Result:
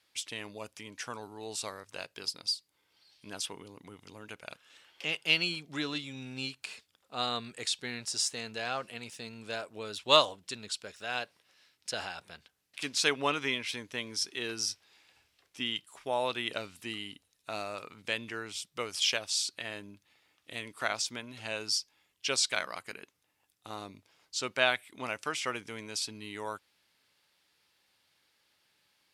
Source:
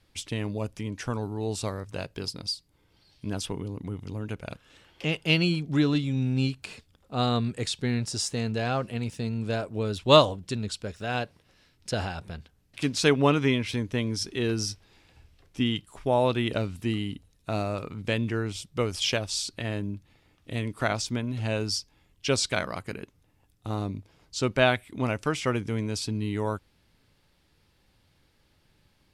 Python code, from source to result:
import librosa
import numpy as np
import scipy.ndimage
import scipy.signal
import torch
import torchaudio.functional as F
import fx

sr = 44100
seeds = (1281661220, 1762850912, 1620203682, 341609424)

y = fx.highpass(x, sr, hz=1400.0, slope=6)